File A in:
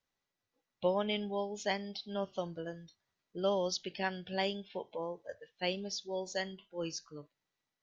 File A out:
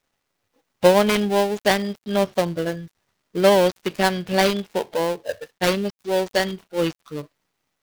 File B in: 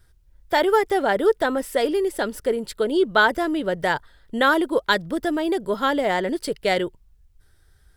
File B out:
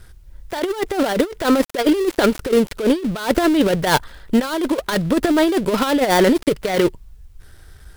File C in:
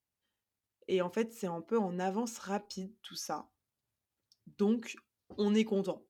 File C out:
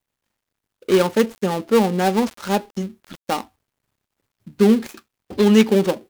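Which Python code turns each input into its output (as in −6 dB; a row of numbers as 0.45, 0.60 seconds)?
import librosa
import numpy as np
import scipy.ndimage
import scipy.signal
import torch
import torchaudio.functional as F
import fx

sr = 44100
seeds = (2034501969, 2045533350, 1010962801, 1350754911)

y = fx.dead_time(x, sr, dead_ms=0.18)
y = fx.over_compress(y, sr, threshold_db=-25.0, ratio=-0.5)
y = y * 10.0 ** (-1.5 / 20.0) / np.max(np.abs(y))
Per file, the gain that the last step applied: +16.5, +9.0, +16.0 decibels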